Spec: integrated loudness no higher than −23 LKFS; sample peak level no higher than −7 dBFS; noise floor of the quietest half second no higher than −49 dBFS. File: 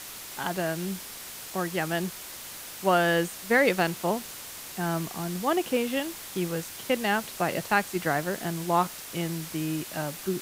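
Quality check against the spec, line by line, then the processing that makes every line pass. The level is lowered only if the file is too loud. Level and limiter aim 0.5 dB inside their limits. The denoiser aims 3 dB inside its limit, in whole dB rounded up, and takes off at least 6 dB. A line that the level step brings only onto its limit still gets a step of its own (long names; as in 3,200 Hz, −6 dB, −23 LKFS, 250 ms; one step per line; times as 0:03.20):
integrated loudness −28.5 LKFS: in spec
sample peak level −8.5 dBFS: in spec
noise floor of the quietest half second −41 dBFS: out of spec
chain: broadband denoise 11 dB, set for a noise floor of −41 dBFS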